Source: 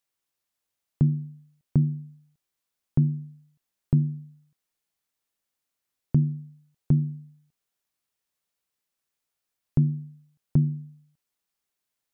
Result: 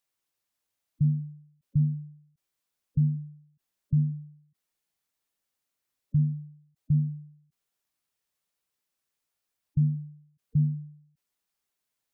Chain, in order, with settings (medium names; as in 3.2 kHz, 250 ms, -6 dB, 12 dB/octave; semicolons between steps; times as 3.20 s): hard clipper -18.5 dBFS, distortion -11 dB; spectral gate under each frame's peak -15 dB strong